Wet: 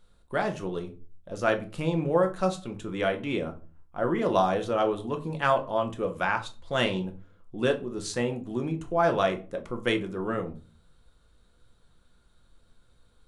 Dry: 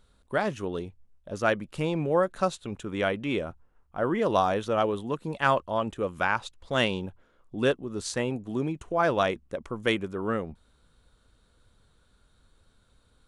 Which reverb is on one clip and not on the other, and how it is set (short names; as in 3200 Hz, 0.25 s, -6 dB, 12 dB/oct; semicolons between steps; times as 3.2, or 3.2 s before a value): shoebox room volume 190 m³, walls furnished, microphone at 0.87 m; gain -2 dB